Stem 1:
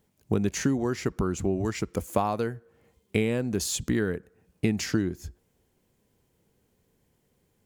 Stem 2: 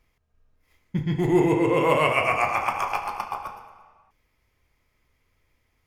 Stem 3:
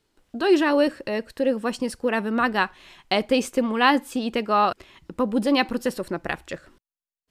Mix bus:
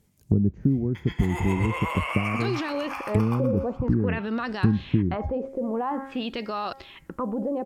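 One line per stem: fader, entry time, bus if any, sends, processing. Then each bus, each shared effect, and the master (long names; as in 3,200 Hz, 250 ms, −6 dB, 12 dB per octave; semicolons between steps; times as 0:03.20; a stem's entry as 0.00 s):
−1.0 dB, 0.00 s, no bus, no send, treble cut that deepens with the level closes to 360 Hz, closed at −26.5 dBFS; bass and treble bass +9 dB, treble +7 dB
−10.5 dB, 0.00 s, bus A, no send, Chebyshev high-pass filter 1,200 Hz, order 2
−11.5 dB, 2.00 s, bus A, no send, hum removal 269.8 Hz, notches 8; auto-filter low-pass sine 0.49 Hz 560–5,500 Hz
bus A: 0.0 dB, automatic gain control gain up to 11 dB; brickwall limiter −21 dBFS, peak gain reduction 16 dB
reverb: not used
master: no processing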